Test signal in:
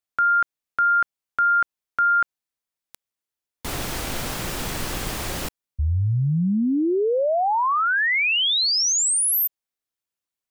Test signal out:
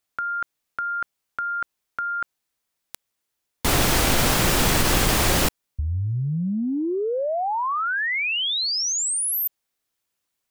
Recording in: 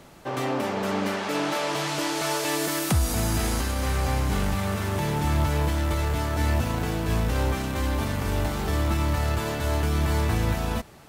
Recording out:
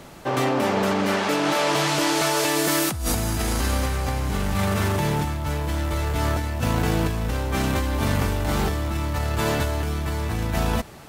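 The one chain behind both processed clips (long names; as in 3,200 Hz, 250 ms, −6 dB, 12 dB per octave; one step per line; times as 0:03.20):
compressor whose output falls as the input rises −27 dBFS, ratio −1
level +4 dB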